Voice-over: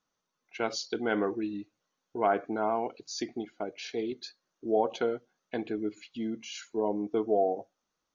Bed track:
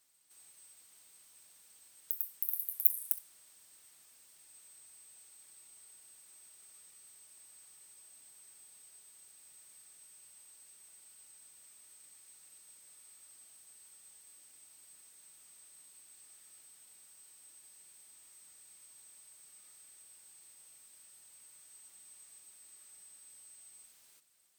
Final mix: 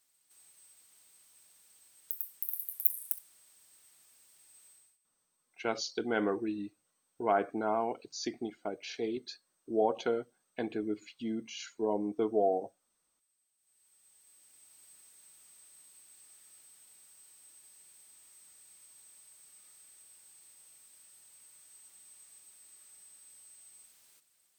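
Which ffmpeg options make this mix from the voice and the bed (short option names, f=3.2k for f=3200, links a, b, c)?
-filter_complex "[0:a]adelay=5050,volume=-2dB[a];[1:a]volume=20dB,afade=t=out:st=4.68:d=0.3:silence=0.1,afade=t=in:st=13.57:d=1.26:silence=0.0841395[b];[a][b]amix=inputs=2:normalize=0"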